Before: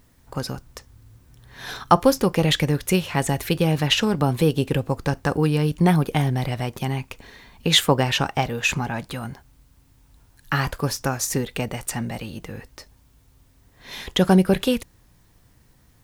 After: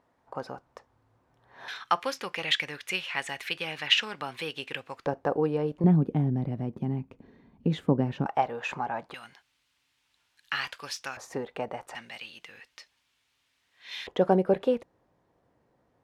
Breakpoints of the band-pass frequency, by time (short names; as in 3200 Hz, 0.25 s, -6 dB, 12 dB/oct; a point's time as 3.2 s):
band-pass, Q 1.4
770 Hz
from 1.68 s 2300 Hz
from 5.06 s 580 Hz
from 5.84 s 230 Hz
from 8.26 s 800 Hz
from 9.14 s 2900 Hz
from 11.17 s 760 Hz
from 11.95 s 2800 Hz
from 14.07 s 570 Hz